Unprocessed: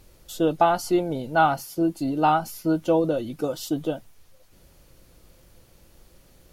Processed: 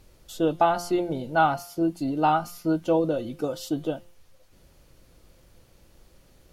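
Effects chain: high shelf 9800 Hz -6.5 dB; de-hum 174.2 Hz, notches 25; gain -1.5 dB

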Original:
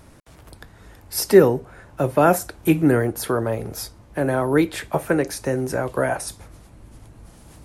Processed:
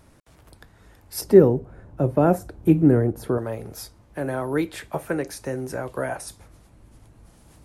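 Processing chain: 1.21–3.38 tilt shelf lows +9 dB, about 830 Hz; gain -6 dB

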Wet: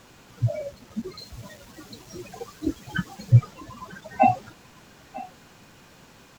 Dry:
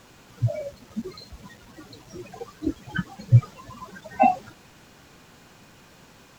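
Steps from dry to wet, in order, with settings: 1.18–3.32 high shelf 4400 Hz +6.5 dB; echo 0.946 s -19 dB

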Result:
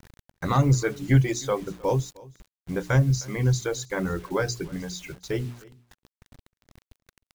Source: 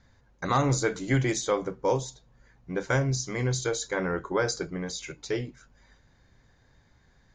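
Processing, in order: reverb removal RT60 1.3 s; tone controls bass +10 dB, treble -1 dB; notches 60/120/180/240/300/360/420 Hz; requantised 8-bit, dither none; echo 0.31 s -22.5 dB

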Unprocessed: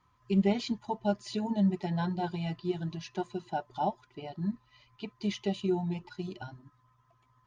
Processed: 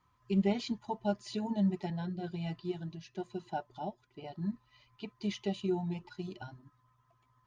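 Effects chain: 1.9–4.24 rotary speaker horn 1.1 Hz; gain -3 dB

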